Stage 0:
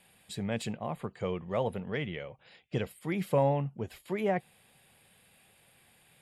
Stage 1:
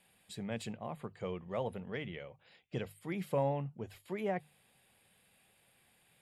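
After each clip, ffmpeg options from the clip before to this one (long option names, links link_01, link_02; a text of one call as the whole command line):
ffmpeg -i in.wav -af "bandreject=frequency=50:width_type=h:width=6,bandreject=frequency=100:width_type=h:width=6,bandreject=frequency=150:width_type=h:width=6,volume=-6dB" out.wav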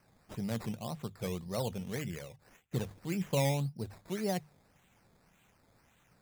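ffmpeg -i in.wav -af "acrusher=samples=12:mix=1:aa=0.000001:lfo=1:lforange=7.2:lforate=1.8,bass=frequency=250:gain=7,treble=frequency=4000:gain=3" out.wav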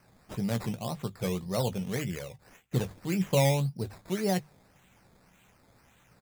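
ffmpeg -i in.wav -filter_complex "[0:a]asplit=2[link_01][link_02];[link_02]adelay=16,volume=-11dB[link_03];[link_01][link_03]amix=inputs=2:normalize=0,volume=5dB" out.wav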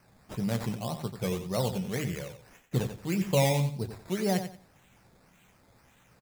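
ffmpeg -i in.wav -af "aecho=1:1:90|180|270:0.335|0.0804|0.0193" out.wav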